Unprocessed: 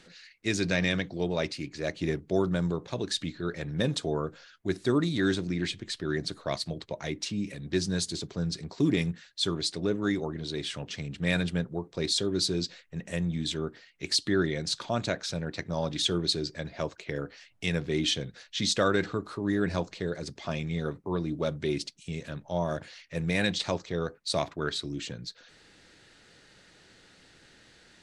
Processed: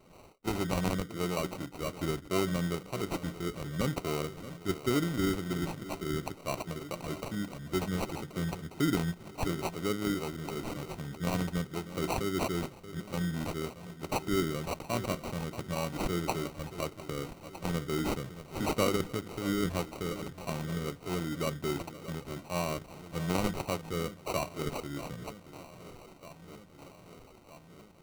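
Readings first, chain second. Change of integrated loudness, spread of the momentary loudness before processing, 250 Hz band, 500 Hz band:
-4.0 dB, 9 LU, -3.0 dB, -3.5 dB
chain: echo whose repeats swap between lows and highs 629 ms, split 970 Hz, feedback 78%, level -13.5 dB; sample-rate reducer 1.7 kHz, jitter 0%; trim -3.5 dB

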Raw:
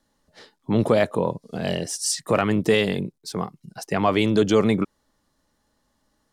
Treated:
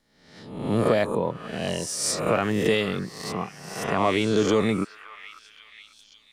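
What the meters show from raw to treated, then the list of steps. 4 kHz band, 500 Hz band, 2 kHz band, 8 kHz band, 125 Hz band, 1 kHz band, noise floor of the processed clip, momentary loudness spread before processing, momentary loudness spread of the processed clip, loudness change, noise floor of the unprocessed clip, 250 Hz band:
-1.0 dB, -2.0 dB, -0.5 dB, -1.0 dB, -3.0 dB, -1.0 dB, -58 dBFS, 12 LU, 13 LU, -2.5 dB, -71 dBFS, -3.0 dB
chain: reverse spectral sustain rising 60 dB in 0.80 s; repeats whose band climbs or falls 544 ms, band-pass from 1.5 kHz, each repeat 0.7 oct, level -10.5 dB; trim -4.5 dB

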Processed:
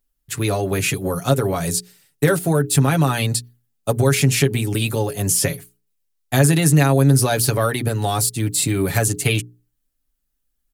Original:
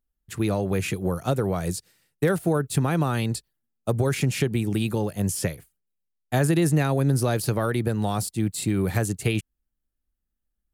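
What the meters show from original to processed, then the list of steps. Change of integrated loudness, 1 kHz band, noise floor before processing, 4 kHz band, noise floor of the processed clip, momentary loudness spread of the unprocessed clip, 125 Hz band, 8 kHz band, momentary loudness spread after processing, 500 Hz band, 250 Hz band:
+6.5 dB, +6.0 dB, -80 dBFS, +10.0 dB, -72 dBFS, 8 LU, +6.0 dB, +12.0 dB, 9 LU, +5.0 dB, +4.0 dB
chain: treble shelf 2.7 kHz +7.5 dB; hum notches 60/120/180/240/300/360/420 Hz; comb 7.2 ms, depth 67%; trim +3.5 dB

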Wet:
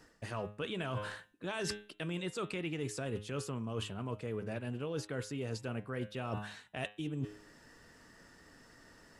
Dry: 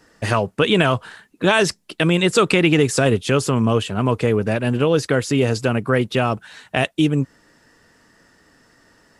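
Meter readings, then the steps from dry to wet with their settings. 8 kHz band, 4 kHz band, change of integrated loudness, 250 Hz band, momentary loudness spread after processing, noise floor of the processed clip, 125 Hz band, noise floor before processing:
-19.0 dB, -20.5 dB, -21.0 dB, -21.0 dB, 20 LU, -63 dBFS, -19.5 dB, -59 dBFS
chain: bass shelf 74 Hz +5.5 dB; de-hum 104.2 Hz, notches 39; reverse; compression 10:1, threshold -31 dBFS, peak gain reduction 20.5 dB; reverse; trim -4.5 dB

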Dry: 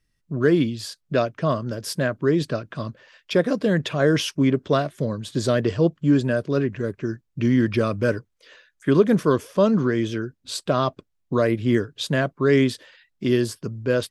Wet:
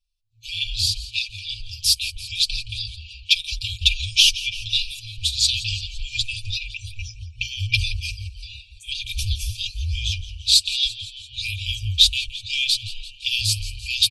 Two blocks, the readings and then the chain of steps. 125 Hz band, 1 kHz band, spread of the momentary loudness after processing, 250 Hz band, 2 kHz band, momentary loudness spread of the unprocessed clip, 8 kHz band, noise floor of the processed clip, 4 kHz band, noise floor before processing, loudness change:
-5.5 dB, under -40 dB, 17 LU, under -35 dB, +1.5 dB, 10 LU, +11.5 dB, -46 dBFS, +16.0 dB, -72 dBFS, +1.0 dB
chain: fifteen-band graphic EQ 100 Hz -8 dB, 400 Hz -12 dB, 1.6 kHz +5 dB, 4 kHz +8 dB; spectral noise reduction 14 dB; bass shelf 480 Hz +3.5 dB; comb 4.6 ms, depth 59%; on a send: frequency-shifting echo 170 ms, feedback 61%, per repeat -140 Hz, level -16 dB; on the sum: level rider gain up to 11.5 dB; in parallel at -5.5 dB: saturation -9 dBFS, distortion -14 dB; on the sum: FFT band-reject 110–2300 Hz; trim -1 dB

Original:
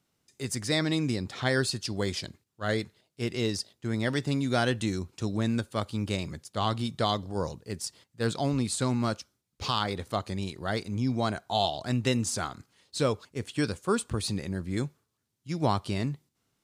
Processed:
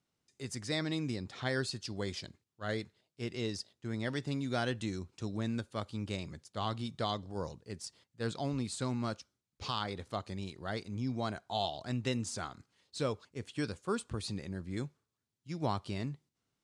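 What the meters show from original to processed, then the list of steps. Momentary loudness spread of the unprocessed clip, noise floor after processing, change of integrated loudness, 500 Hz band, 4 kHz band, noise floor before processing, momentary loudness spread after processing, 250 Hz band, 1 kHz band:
9 LU, under -85 dBFS, -7.5 dB, -7.5 dB, -7.5 dB, -80 dBFS, 10 LU, -7.5 dB, -7.5 dB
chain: low-pass 8.4 kHz 12 dB/octave; trim -7.5 dB

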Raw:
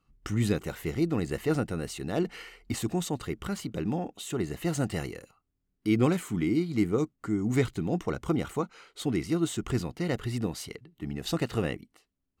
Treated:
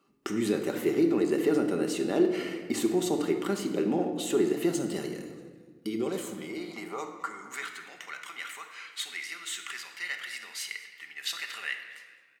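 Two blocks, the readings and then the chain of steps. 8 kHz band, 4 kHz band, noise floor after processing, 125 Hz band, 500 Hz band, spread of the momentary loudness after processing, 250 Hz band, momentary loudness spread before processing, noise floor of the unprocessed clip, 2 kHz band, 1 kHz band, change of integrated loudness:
+2.0 dB, +3.0 dB, -55 dBFS, -12.0 dB, +2.5 dB, 15 LU, -0.5 dB, 9 LU, -79 dBFS, +3.5 dB, -0.5 dB, 0.0 dB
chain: on a send: frequency-shifting echo 212 ms, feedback 42%, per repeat -97 Hz, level -23 dB; on the sum: peak limiter -20 dBFS, peak gain reduction 8 dB; in parallel at +3 dB: compression, threshold -41 dBFS, peak gain reduction 15.5 dB; on the sum: high-pass sweep 320 Hz -> 1.9 kHz, 5.74–8.00 s; time-frequency box 4.71–6.50 s, 240–2900 Hz -6 dB; simulated room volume 1600 m³, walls mixed, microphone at 1.2 m; trim -2.5 dB

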